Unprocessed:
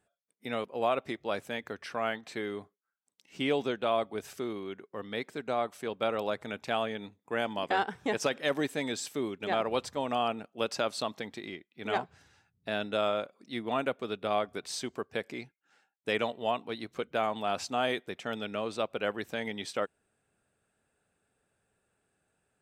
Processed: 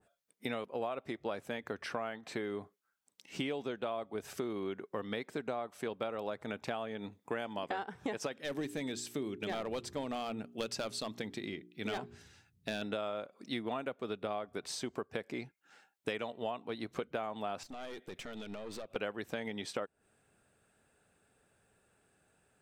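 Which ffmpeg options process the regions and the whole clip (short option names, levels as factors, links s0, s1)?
-filter_complex "[0:a]asettb=1/sr,asplit=3[s0][s1][s2];[s0]atrim=end=8.334[s3];[s1]atrim=start=8.33:end=12.82,asetpts=PTS-STARTPTS,afade=t=in:d=0.004:c=qsin,afade=t=out:st=4.486:d=0.004:c=qsin,bandreject=f=59.01:t=h:w=4,bandreject=f=118.02:t=h:w=4,bandreject=f=177.03:t=h:w=4,bandreject=f=236.04:t=h:w=4,bandreject=f=295.05:t=h:w=4,bandreject=f=354.06:t=h:w=4,bandreject=f=413.07:t=h:w=4,asoftclip=type=hard:threshold=0.0631,equalizer=f=870:w=0.66:g=-8[s4];[s2]atrim=start=12.816[s5];[s3][s4]acrossfade=d=0.004:c1=hsin:c2=qsin[s6];[s6][s5]acrossfade=d=0.004:c1=qsin:c2=hsin,asettb=1/sr,asplit=3[s7][s8][s9];[s7]atrim=end=17.634[s10];[s8]atrim=start=17.63:end=18.96,asetpts=PTS-STARTPTS,afade=t=in:d=0.004:c=qsin,afade=t=out:st=1.326:d=0.004:c=qsin,equalizer=f=980:w=1.6:g=-8,acompressor=threshold=0.01:ratio=6:attack=3.2:release=140:knee=1:detection=peak,aeval=exprs='(tanh(158*val(0)+0.5)-tanh(0.5))/158':c=same[s11];[s9]atrim=start=18.956[s12];[s10][s11]acrossfade=d=0.004:c1=hsin:c2=qsin[s13];[s13][s12]acrossfade=d=0.004:c1=qsin:c2=hsin,acompressor=threshold=0.0112:ratio=10,adynamicequalizer=threshold=0.00141:dfrequency=1700:dqfactor=0.7:tfrequency=1700:tqfactor=0.7:attack=5:release=100:ratio=0.375:range=2.5:mode=cutabove:tftype=highshelf,volume=1.88"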